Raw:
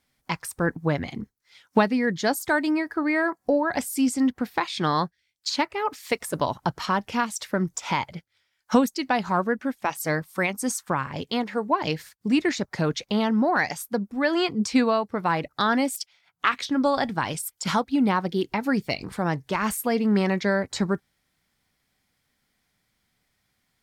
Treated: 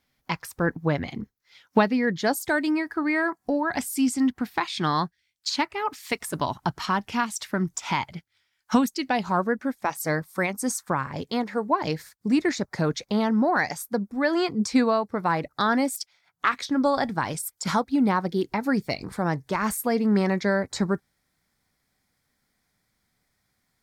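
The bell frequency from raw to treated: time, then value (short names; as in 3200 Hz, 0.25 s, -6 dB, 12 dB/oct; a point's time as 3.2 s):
bell -8 dB 0.48 oct
2.19 s 8800 Hz
2.34 s 1800 Hz
2.78 s 520 Hz
8.86 s 520 Hz
9.43 s 2900 Hz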